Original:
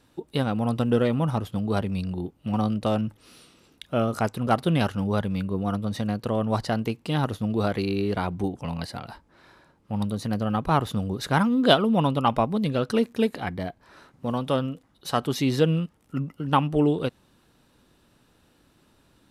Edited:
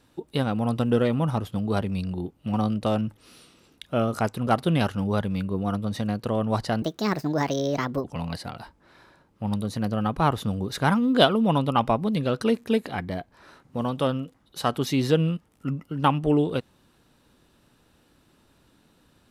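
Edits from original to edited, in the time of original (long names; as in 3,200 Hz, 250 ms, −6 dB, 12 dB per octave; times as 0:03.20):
0:06.82–0:08.53: play speed 140%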